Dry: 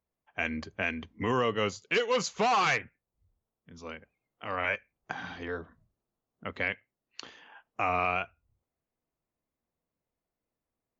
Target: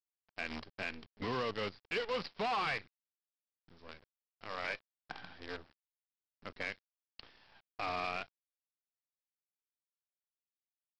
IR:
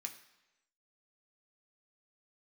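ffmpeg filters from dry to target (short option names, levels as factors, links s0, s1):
-af "aresample=11025,acrusher=bits=6:dc=4:mix=0:aa=0.000001,aresample=44100,asoftclip=type=tanh:threshold=0.133,volume=0.398"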